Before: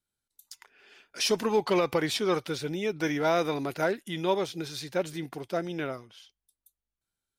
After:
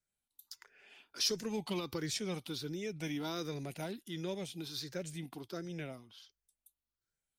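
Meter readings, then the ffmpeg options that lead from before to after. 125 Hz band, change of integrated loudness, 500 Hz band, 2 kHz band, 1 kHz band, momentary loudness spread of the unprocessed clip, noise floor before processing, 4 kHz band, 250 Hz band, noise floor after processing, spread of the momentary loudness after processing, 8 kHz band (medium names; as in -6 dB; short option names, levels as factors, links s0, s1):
-5.5 dB, -10.0 dB, -14.0 dB, -13.0 dB, -16.5 dB, 10 LU, under -85 dBFS, -5.0 dB, -8.5 dB, under -85 dBFS, 19 LU, -4.0 dB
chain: -filter_complex "[0:a]afftfilt=real='re*pow(10,8/40*sin(2*PI*(0.54*log(max(b,1)*sr/1024/100)/log(2)-(1.4)*(pts-256)/sr)))':imag='im*pow(10,8/40*sin(2*PI*(0.54*log(max(b,1)*sr/1024/100)/log(2)-(1.4)*(pts-256)/sr)))':win_size=1024:overlap=0.75,acrossover=split=280|3000[s0][s1][s2];[s1]acompressor=threshold=0.00398:ratio=2[s3];[s0][s3][s2]amix=inputs=3:normalize=0,volume=0.562"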